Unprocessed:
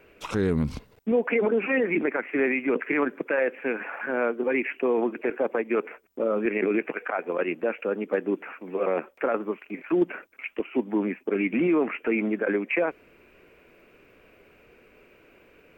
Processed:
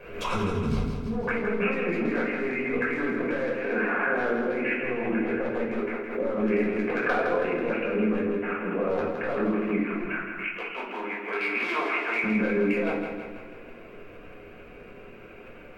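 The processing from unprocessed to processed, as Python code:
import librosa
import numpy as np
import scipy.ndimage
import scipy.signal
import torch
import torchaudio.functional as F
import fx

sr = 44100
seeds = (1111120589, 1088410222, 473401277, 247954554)

y = np.minimum(x, 2.0 * 10.0 ** (-18.5 / 20.0) - x)
y = fx.highpass(y, sr, hz=1100.0, slope=12, at=(10.07, 12.24))
y = fx.over_compress(y, sr, threshold_db=-31.0, ratio=-1.0)
y = fx.high_shelf(y, sr, hz=3500.0, db=-8.5)
y = fx.echo_feedback(y, sr, ms=163, feedback_pct=55, wet_db=-6)
y = fx.room_shoebox(y, sr, seeds[0], volume_m3=500.0, walls='furnished', distance_m=5.4)
y = fx.pre_swell(y, sr, db_per_s=76.0)
y = y * librosa.db_to_amplitude(-5.0)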